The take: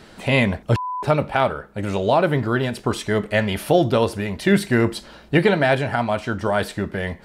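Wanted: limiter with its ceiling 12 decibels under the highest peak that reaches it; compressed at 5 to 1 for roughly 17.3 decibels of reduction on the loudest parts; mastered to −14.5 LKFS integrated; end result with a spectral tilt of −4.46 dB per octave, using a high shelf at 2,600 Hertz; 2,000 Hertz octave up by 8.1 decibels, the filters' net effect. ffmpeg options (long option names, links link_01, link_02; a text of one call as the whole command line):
ffmpeg -i in.wav -af "equalizer=frequency=2000:width_type=o:gain=8,highshelf=frequency=2600:gain=4.5,acompressor=threshold=-29dB:ratio=5,volume=20.5dB,alimiter=limit=-3.5dB:level=0:latency=1" out.wav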